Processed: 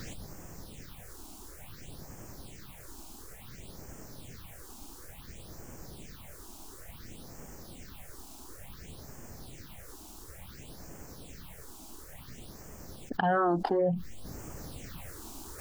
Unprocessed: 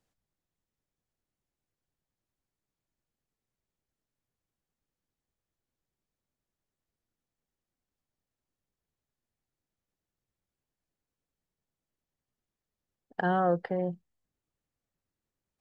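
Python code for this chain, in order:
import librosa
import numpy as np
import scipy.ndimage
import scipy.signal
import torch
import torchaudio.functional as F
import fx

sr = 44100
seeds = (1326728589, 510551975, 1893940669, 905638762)

y = fx.rider(x, sr, range_db=10, speed_s=0.5)
y = fx.phaser_stages(y, sr, stages=6, low_hz=130.0, high_hz=3800.0, hz=0.57, feedback_pct=20)
y = fx.env_flatten(y, sr, amount_pct=70)
y = y * 10.0 ** (5.5 / 20.0)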